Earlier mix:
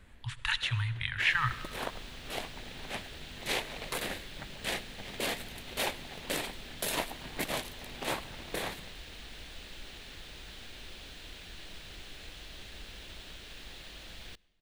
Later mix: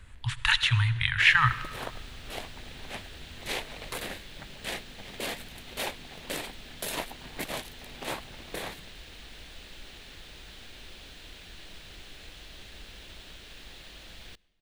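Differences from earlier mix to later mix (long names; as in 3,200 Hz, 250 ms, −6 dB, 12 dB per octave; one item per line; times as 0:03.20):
speech +7.5 dB
first sound: send off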